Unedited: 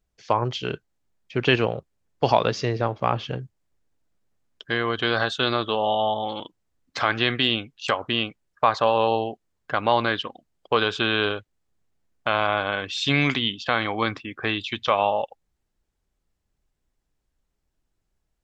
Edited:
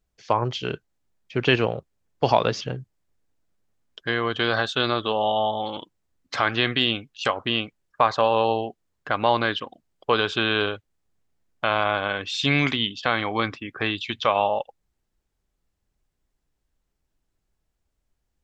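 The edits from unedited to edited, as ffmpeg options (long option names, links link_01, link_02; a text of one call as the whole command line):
ffmpeg -i in.wav -filter_complex "[0:a]asplit=2[link_01][link_02];[link_01]atrim=end=2.612[link_03];[link_02]atrim=start=3.238[link_04];[link_03][link_04]acrossfade=duration=0.004:curve1=hsin:curve2=hsin" out.wav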